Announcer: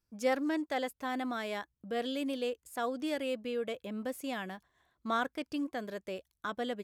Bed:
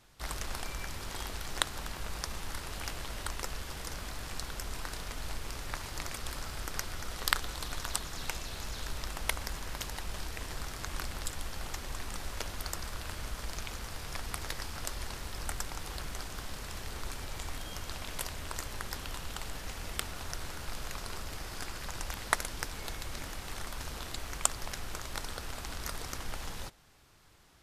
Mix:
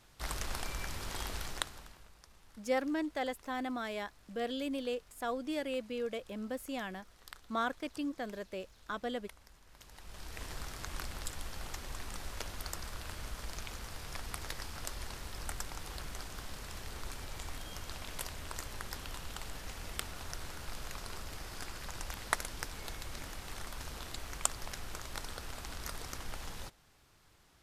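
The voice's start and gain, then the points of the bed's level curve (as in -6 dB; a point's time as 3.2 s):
2.45 s, -2.0 dB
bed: 1.43 s -0.5 dB
2.15 s -22 dB
9.65 s -22 dB
10.41 s -3.5 dB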